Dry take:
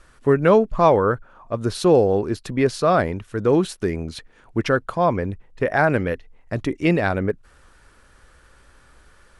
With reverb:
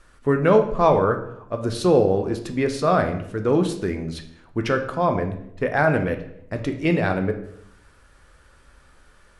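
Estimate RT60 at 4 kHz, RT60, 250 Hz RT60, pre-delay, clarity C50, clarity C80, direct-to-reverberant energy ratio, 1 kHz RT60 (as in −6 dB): 0.55 s, 0.70 s, 0.90 s, 9 ms, 9.5 dB, 13.0 dB, 5.0 dB, 0.65 s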